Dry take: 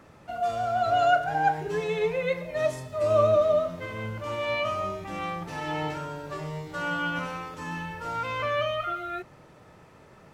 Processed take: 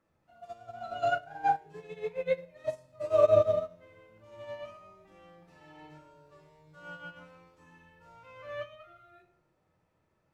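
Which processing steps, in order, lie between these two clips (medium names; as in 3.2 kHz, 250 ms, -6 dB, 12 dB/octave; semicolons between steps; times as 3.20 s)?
simulated room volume 98 m³, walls mixed, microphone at 0.65 m; upward expansion 2.5:1, over -28 dBFS; trim -3.5 dB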